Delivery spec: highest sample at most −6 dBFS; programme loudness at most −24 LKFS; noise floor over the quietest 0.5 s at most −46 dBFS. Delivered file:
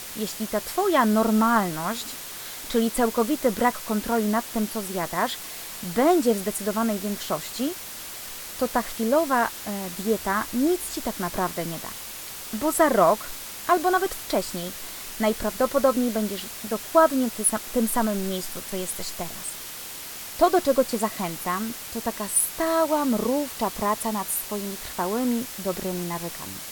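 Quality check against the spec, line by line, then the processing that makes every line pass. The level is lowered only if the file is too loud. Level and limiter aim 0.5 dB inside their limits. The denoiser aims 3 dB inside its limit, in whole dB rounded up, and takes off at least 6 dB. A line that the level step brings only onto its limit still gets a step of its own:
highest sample −5.0 dBFS: out of spec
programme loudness −25.0 LKFS: in spec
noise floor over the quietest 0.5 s −37 dBFS: out of spec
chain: broadband denoise 12 dB, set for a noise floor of −37 dBFS
brickwall limiter −6.5 dBFS

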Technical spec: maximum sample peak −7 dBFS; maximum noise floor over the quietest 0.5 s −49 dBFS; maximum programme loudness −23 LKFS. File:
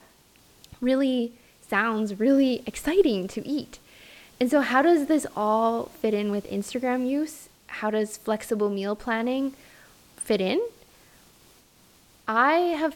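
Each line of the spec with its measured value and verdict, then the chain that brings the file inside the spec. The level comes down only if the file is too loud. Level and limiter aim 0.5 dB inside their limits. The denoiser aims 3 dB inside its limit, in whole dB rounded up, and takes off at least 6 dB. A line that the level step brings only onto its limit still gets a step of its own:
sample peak −8.5 dBFS: in spec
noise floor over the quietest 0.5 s −57 dBFS: in spec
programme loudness −25.0 LKFS: in spec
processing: no processing needed

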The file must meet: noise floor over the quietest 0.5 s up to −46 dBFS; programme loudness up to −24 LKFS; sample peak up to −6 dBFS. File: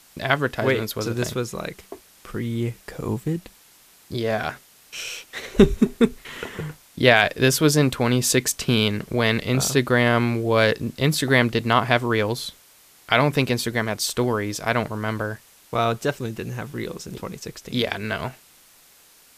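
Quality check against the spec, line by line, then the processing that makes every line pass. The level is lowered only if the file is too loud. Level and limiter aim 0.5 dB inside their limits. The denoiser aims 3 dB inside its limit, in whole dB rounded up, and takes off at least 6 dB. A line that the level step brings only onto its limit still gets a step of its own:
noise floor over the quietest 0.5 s −53 dBFS: in spec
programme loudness −22.0 LKFS: out of spec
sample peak −2.0 dBFS: out of spec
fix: level −2.5 dB
brickwall limiter −6.5 dBFS

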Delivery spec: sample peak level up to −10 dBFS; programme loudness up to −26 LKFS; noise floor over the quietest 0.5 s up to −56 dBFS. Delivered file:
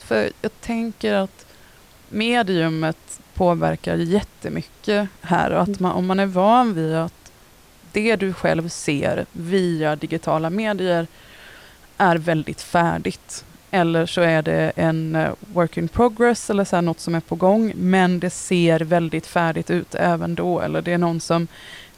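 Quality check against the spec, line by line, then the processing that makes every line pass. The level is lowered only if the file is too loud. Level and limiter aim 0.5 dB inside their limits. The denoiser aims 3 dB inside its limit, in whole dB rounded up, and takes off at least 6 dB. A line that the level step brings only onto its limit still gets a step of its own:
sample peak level −5.5 dBFS: out of spec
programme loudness −20.5 LKFS: out of spec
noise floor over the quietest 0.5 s −49 dBFS: out of spec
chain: broadband denoise 6 dB, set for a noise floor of −49 dBFS
level −6 dB

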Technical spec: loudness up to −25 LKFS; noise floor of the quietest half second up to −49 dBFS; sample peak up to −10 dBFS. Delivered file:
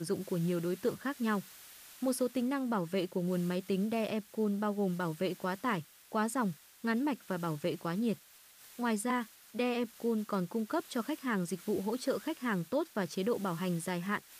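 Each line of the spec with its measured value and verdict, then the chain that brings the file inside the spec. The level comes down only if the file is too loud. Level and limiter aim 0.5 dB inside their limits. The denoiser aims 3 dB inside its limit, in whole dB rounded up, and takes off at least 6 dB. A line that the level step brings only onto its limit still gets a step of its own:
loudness −34.5 LKFS: in spec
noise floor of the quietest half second −58 dBFS: in spec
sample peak −21.0 dBFS: in spec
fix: no processing needed

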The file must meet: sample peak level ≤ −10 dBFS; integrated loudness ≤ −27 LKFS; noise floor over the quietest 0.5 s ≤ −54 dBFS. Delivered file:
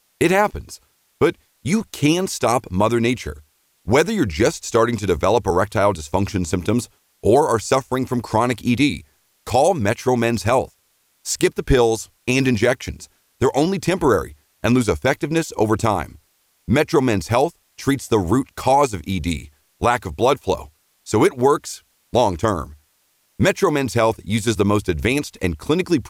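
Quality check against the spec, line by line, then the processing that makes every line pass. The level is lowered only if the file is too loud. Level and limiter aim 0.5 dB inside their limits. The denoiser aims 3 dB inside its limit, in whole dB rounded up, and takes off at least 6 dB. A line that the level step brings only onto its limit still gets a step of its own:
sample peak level −4.5 dBFS: out of spec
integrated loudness −19.5 LKFS: out of spec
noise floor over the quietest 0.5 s −63 dBFS: in spec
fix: level −8 dB

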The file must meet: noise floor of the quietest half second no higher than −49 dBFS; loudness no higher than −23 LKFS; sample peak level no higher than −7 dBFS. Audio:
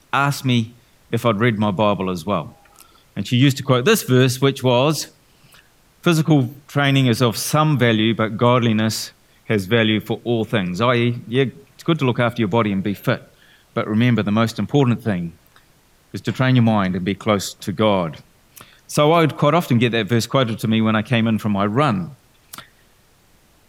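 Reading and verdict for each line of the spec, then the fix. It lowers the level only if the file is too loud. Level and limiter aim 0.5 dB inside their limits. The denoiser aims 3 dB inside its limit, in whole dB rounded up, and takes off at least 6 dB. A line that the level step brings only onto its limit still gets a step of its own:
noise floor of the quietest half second −55 dBFS: in spec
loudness −18.5 LKFS: out of spec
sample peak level −3.5 dBFS: out of spec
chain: level −5 dB

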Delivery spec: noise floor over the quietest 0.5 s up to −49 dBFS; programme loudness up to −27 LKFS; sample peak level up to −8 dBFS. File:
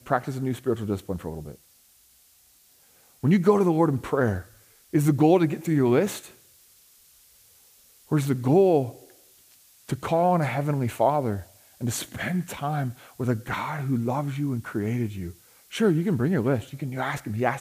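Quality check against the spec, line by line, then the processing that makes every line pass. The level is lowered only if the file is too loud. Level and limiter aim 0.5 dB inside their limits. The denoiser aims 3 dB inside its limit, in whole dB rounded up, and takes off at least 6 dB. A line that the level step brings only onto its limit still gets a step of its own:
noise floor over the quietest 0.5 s −59 dBFS: in spec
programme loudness −25.0 LKFS: out of spec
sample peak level −7.0 dBFS: out of spec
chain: level −2.5 dB

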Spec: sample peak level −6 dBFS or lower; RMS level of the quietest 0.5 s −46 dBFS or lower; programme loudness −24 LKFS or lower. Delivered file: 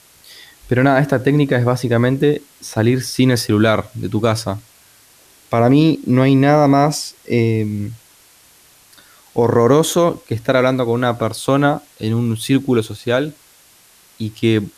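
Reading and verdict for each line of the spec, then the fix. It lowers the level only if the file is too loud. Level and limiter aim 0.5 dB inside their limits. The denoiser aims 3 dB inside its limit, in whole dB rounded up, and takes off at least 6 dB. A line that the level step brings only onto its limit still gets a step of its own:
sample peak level −3.5 dBFS: out of spec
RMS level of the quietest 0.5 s −49 dBFS: in spec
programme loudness −16.5 LKFS: out of spec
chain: level −8 dB

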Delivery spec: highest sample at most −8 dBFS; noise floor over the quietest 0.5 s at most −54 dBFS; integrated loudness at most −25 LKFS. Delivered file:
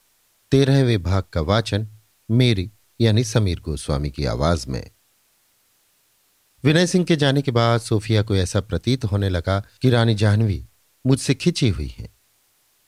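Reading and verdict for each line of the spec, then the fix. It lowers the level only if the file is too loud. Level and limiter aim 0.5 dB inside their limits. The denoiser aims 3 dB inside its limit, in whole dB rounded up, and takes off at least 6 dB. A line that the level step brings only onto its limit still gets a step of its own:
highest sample −4.0 dBFS: out of spec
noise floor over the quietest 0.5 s −63 dBFS: in spec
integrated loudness −20.5 LKFS: out of spec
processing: level −5 dB

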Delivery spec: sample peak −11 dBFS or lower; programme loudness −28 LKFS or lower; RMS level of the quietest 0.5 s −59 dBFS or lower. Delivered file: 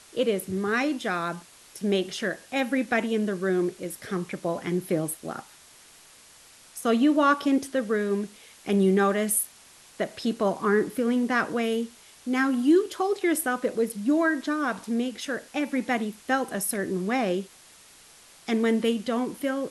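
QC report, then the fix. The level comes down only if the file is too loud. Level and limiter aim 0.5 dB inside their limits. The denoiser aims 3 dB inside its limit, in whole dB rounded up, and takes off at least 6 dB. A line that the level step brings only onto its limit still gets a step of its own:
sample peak −9.5 dBFS: out of spec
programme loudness −26.5 LKFS: out of spec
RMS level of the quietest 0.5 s −53 dBFS: out of spec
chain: broadband denoise 7 dB, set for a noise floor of −53 dBFS
level −2 dB

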